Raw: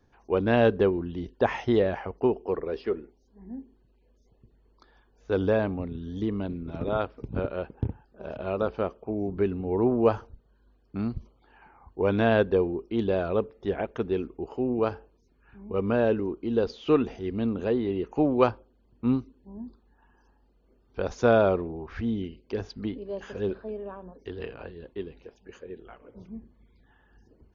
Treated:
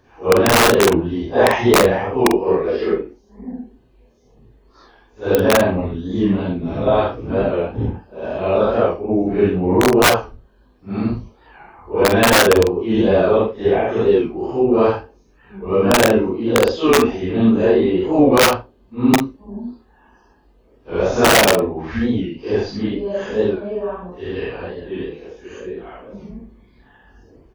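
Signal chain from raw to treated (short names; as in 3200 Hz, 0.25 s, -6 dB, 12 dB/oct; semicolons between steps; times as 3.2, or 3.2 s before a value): phase scrambler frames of 0.2 s; high shelf 4700 Hz -3.5 dB; notch 1400 Hz, Q 12; wrapped overs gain 15 dB; low shelf 200 Hz -6 dB; doubler 44 ms -12 dB; maximiser +16 dB; record warp 45 rpm, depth 100 cents; gain -2.5 dB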